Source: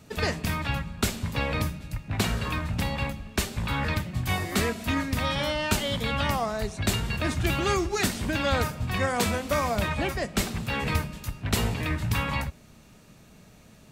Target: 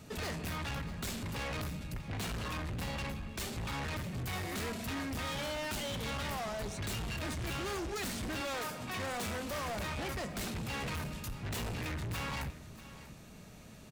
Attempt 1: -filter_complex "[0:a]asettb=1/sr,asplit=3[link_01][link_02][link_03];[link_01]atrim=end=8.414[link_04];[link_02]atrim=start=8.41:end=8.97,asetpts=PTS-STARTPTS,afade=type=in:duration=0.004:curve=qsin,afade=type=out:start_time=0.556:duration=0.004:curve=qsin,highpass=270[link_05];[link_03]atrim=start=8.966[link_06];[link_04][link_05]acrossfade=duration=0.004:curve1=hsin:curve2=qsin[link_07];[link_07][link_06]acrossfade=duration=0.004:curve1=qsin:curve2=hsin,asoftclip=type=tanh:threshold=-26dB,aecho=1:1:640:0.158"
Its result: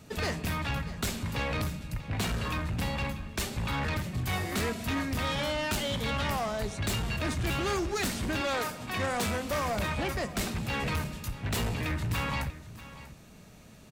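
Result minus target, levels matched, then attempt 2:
soft clipping: distortion −6 dB
-filter_complex "[0:a]asettb=1/sr,asplit=3[link_01][link_02][link_03];[link_01]atrim=end=8.414[link_04];[link_02]atrim=start=8.41:end=8.97,asetpts=PTS-STARTPTS,afade=type=in:duration=0.004:curve=qsin,afade=type=out:start_time=0.556:duration=0.004:curve=qsin,highpass=270[link_05];[link_03]atrim=start=8.966[link_06];[link_04][link_05]acrossfade=duration=0.004:curve1=hsin:curve2=qsin[link_07];[link_07][link_06]acrossfade=duration=0.004:curve1=qsin:curve2=hsin,asoftclip=type=tanh:threshold=-36dB,aecho=1:1:640:0.158"

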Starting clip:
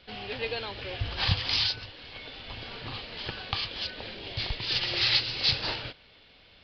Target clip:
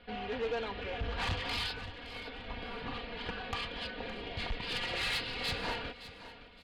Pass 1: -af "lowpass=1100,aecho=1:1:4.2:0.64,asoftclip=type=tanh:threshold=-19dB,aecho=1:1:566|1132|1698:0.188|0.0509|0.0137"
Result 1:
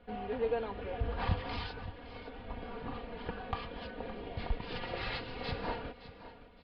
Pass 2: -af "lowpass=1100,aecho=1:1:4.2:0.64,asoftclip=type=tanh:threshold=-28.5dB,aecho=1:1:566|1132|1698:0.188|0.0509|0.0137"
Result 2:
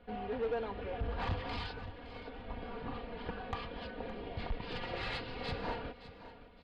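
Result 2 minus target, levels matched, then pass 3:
2,000 Hz band −3.5 dB
-af "lowpass=2200,aecho=1:1:4.2:0.64,asoftclip=type=tanh:threshold=-28.5dB,aecho=1:1:566|1132|1698:0.188|0.0509|0.0137"

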